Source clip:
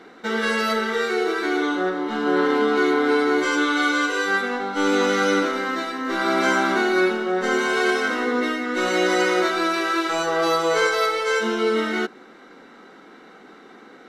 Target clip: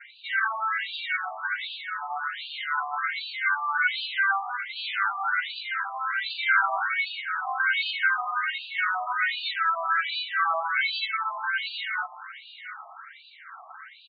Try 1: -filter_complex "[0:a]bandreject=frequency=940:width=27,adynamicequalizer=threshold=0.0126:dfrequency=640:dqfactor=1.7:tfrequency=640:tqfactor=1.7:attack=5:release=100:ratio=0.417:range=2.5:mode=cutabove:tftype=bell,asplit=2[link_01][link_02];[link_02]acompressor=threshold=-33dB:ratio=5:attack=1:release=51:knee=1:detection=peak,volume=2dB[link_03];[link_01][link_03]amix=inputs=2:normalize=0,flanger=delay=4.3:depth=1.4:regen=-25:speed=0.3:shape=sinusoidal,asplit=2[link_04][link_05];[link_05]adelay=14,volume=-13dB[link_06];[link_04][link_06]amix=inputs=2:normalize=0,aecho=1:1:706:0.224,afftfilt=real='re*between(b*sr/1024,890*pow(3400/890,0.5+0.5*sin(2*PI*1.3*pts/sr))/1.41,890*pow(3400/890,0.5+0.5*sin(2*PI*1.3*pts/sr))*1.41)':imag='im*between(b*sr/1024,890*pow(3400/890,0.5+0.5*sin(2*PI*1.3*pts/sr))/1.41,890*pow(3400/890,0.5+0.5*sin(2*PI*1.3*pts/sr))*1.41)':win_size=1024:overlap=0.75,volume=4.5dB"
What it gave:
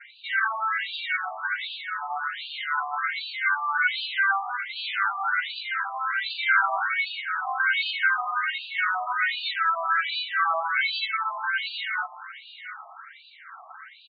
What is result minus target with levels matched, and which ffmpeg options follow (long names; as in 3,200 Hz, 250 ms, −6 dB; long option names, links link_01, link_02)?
downward compressor: peak gain reduction −5.5 dB
-filter_complex "[0:a]bandreject=frequency=940:width=27,adynamicequalizer=threshold=0.0126:dfrequency=640:dqfactor=1.7:tfrequency=640:tqfactor=1.7:attack=5:release=100:ratio=0.417:range=2.5:mode=cutabove:tftype=bell,asplit=2[link_01][link_02];[link_02]acompressor=threshold=-40dB:ratio=5:attack=1:release=51:knee=1:detection=peak,volume=2dB[link_03];[link_01][link_03]amix=inputs=2:normalize=0,flanger=delay=4.3:depth=1.4:regen=-25:speed=0.3:shape=sinusoidal,asplit=2[link_04][link_05];[link_05]adelay=14,volume=-13dB[link_06];[link_04][link_06]amix=inputs=2:normalize=0,aecho=1:1:706:0.224,afftfilt=real='re*between(b*sr/1024,890*pow(3400/890,0.5+0.5*sin(2*PI*1.3*pts/sr))/1.41,890*pow(3400/890,0.5+0.5*sin(2*PI*1.3*pts/sr))*1.41)':imag='im*between(b*sr/1024,890*pow(3400/890,0.5+0.5*sin(2*PI*1.3*pts/sr))/1.41,890*pow(3400/890,0.5+0.5*sin(2*PI*1.3*pts/sr))*1.41)':win_size=1024:overlap=0.75,volume=4.5dB"